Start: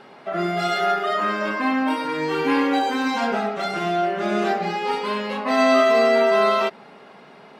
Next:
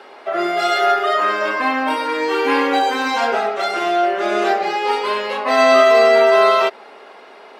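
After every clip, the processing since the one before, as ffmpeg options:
ffmpeg -i in.wav -af "highpass=frequency=330:width=0.5412,highpass=frequency=330:width=1.3066,volume=5.5dB" out.wav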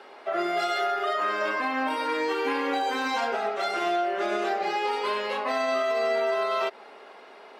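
ffmpeg -i in.wav -af "alimiter=limit=-11.5dB:level=0:latency=1:release=136,volume=-6.5dB" out.wav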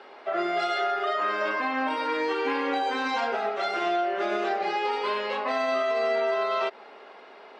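ffmpeg -i in.wav -af "lowpass=5300" out.wav

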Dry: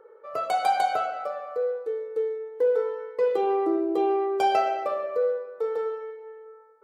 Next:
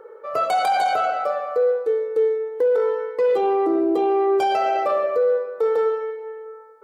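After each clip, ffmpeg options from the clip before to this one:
ffmpeg -i in.wav -af "alimiter=limit=-22.5dB:level=0:latency=1:release=11,volume=9dB" out.wav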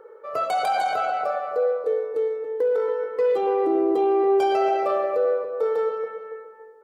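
ffmpeg -i in.wav -filter_complex "[0:a]asplit=2[link_01][link_02];[link_02]adelay=280,lowpass=frequency=1400:poles=1,volume=-6dB,asplit=2[link_03][link_04];[link_04]adelay=280,lowpass=frequency=1400:poles=1,volume=0.39,asplit=2[link_05][link_06];[link_06]adelay=280,lowpass=frequency=1400:poles=1,volume=0.39,asplit=2[link_07][link_08];[link_08]adelay=280,lowpass=frequency=1400:poles=1,volume=0.39,asplit=2[link_09][link_10];[link_10]adelay=280,lowpass=frequency=1400:poles=1,volume=0.39[link_11];[link_01][link_03][link_05][link_07][link_09][link_11]amix=inputs=6:normalize=0,volume=-3.5dB" out.wav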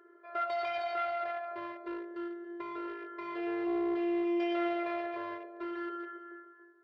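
ffmpeg -i in.wav -af "aeval=exprs='clip(val(0),-1,0.0708)':channel_layout=same,afftfilt=real='hypot(re,im)*cos(PI*b)':imag='0':win_size=512:overlap=0.75,highpass=160,equalizer=frequency=190:width_type=q:width=4:gain=-7,equalizer=frequency=270:width_type=q:width=4:gain=-10,equalizer=frequency=740:width_type=q:width=4:gain=-4,equalizer=frequency=2000:width_type=q:width=4:gain=7,lowpass=frequency=4100:width=0.5412,lowpass=frequency=4100:width=1.3066,volume=-4.5dB" out.wav

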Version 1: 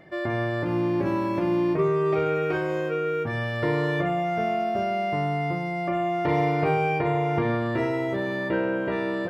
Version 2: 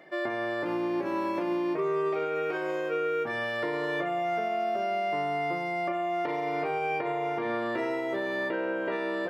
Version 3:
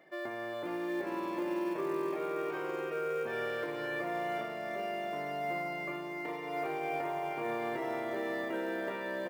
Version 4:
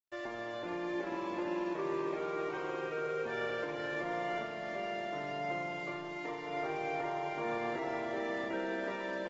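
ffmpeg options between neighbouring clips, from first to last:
ffmpeg -i in.wav -af "highpass=340,alimiter=limit=-21.5dB:level=0:latency=1:release=214" out.wav
ffmpeg -i in.wav -af "aecho=1:1:410|758.5|1055|1307|1521:0.631|0.398|0.251|0.158|0.1,acrusher=bits=7:mode=log:mix=0:aa=0.000001,volume=-8dB" out.wav
ffmpeg -i in.wav -af "aeval=exprs='sgn(val(0))*max(abs(val(0))-0.00266,0)':channel_layout=same,volume=-1dB" -ar 48000 -c:a aac -b:a 24k out.aac

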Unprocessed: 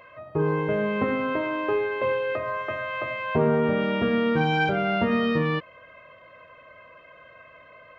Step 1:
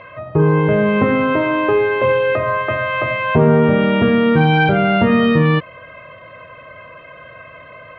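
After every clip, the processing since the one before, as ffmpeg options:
ffmpeg -i in.wav -filter_complex "[0:a]lowpass=frequency=4100:width=0.5412,lowpass=frequency=4100:width=1.3066,equalizer=frequency=120:width_type=o:width=1.2:gain=7,asplit=2[link_01][link_02];[link_02]alimiter=limit=-20dB:level=0:latency=1,volume=0.5dB[link_03];[link_01][link_03]amix=inputs=2:normalize=0,volume=4.5dB" out.wav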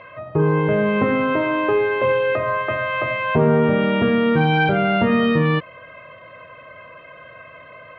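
ffmpeg -i in.wav -af "lowshelf=frequency=93:gain=-7,volume=-3dB" out.wav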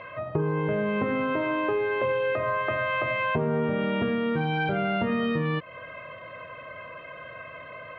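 ffmpeg -i in.wav -af "acompressor=threshold=-24dB:ratio=5" out.wav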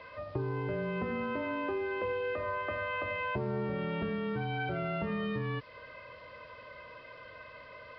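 ffmpeg -i in.wav -af "acrusher=bits=7:mix=0:aa=0.000001,afreqshift=-27,aresample=11025,aresample=44100,volume=-8dB" out.wav

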